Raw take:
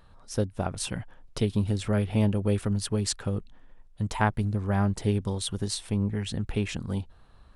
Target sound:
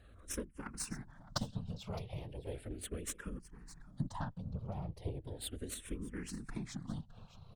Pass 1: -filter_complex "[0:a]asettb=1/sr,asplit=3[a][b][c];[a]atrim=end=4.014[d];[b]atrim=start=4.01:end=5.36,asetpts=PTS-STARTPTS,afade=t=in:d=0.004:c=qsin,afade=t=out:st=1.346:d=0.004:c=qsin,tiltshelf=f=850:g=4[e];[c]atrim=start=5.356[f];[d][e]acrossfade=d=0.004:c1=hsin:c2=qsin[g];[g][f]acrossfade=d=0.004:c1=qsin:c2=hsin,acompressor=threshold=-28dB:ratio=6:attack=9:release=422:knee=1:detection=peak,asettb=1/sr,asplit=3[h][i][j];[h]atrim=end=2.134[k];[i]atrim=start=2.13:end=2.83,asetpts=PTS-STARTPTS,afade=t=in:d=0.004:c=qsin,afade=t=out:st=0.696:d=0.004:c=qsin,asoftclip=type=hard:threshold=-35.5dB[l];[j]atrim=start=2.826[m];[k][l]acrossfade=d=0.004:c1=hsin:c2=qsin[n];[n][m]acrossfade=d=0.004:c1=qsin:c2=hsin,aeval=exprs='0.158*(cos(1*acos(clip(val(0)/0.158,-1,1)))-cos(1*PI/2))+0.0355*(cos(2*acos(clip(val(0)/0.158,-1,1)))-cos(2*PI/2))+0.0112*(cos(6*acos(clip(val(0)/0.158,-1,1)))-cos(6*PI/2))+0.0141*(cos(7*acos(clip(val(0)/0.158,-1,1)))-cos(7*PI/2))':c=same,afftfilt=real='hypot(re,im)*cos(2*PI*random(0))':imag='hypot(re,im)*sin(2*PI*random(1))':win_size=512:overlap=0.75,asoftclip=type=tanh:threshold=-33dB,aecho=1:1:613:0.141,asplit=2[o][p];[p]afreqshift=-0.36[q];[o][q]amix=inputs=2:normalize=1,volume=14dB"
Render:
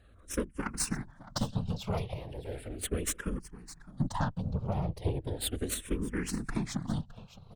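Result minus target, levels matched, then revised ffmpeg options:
compressor: peak gain reduction -6.5 dB
-filter_complex "[0:a]asettb=1/sr,asplit=3[a][b][c];[a]atrim=end=4.014[d];[b]atrim=start=4.01:end=5.36,asetpts=PTS-STARTPTS,afade=t=in:d=0.004:c=qsin,afade=t=out:st=1.346:d=0.004:c=qsin,tiltshelf=f=850:g=4[e];[c]atrim=start=5.356[f];[d][e]acrossfade=d=0.004:c1=hsin:c2=qsin[g];[g][f]acrossfade=d=0.004:c1=qsin:c2=hsin,acompressor=threshold=-36dB:ratio=6:attack=9:release=422:knee=1:detection=peak,asettb=1/sr,asplit=3[h][i][j];[h]atrim=end=2.134[k];[i]atrim=start=2.13:end=2.83,asetpts=PTS-STARTPTS,afade=t=in:d=0.004:c=qsin,afade=t=out:st=0.696:d=0.004:c=qsin,asoftclip=type=hard:threshold=-35.5dB[l];[j]atrim=start=2.826[m];[k][l]acrossfade=d=0.004:c1=hsin:c2=qsin[n];[n][m]acrossfade=d=0.004:c1=qsin:c2=hsin,aeval=exprs='0.158*(cos(1*acos(clip(val(0)/0.158,-1,1)))-cos(1*PI/2))+0.0355*(cos(2*acos(clip(val(0)/0.158,-1,1)))-cos(2*PI/2))+0.0112*(cos(6*acos(clip(val(0)/0.158,-1,1)))-cos(6*PI/2))+0.0141*(cos(7*acos(clip(val(0)/0.158,-1,1)))-cos(7*PI/2))':c=same,afftfilt=real='hypot(re,im)*cos(2*PI*random(0))':imag='hypot(re,im)*sin(2*PI*random(1))':win_size=512:overlap=0.75,asoftclip=type=tanh:threshold=-33dB,aecho=1:1:613:0.141,asplit=2[o][p];[p]afreqshift=-0.36[q];[o][q]amix=inputs=2:normalize=1,volume=14dB"

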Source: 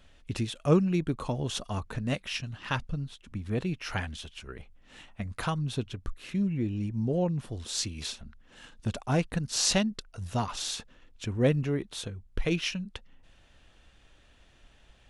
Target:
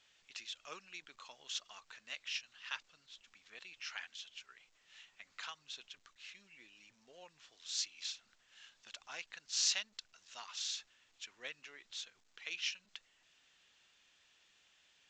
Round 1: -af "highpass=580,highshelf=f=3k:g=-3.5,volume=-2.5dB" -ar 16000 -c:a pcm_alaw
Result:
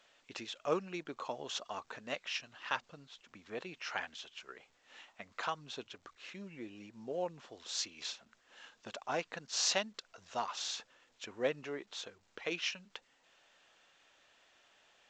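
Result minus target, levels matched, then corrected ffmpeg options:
500 Hz band +19.0 dB
-af "highpass=2.3k,highshelf=f=3k:g=-3.5,volume=-2.5dB" -ar 16000 -c:a pcm_alaw

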